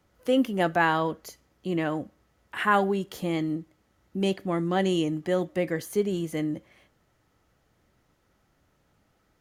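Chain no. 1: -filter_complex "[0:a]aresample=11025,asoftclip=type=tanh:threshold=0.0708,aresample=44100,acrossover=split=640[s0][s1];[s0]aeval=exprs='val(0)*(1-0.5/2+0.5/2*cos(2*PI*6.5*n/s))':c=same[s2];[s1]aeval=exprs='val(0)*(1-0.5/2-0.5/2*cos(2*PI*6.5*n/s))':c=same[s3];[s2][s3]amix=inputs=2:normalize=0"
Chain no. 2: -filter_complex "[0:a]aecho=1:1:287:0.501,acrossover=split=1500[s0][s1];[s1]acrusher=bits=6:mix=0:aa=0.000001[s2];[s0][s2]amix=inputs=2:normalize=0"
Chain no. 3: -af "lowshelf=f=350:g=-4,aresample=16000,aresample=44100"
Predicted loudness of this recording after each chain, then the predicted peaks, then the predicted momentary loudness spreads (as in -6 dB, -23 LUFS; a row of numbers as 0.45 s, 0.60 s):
-33.5 LUFS, -27.0 LUFS, -28.5 LUFS; -18.0 dBFS, -9.5 dBFS, -9.5 dBFS; 8 LU, 13 LU, 14 LU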